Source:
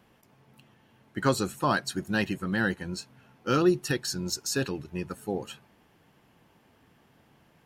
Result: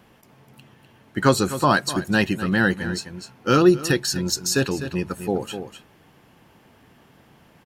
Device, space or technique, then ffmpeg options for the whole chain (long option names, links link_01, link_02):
ducked delay: -filter_complex "[0:a]asplit=3[link_01][link_02][link_03];[link_02]adelay=251,volume=-9dB[link_04];[link_03]apad=whole_len=348492[link_05];[link_04][link_05]sidechaincompress=threshold=-34dB:ratio=8:attack=16:release=200[link_06];[link_01][link_06]amix=inputs=2:normalize=0,volume=7.5dB"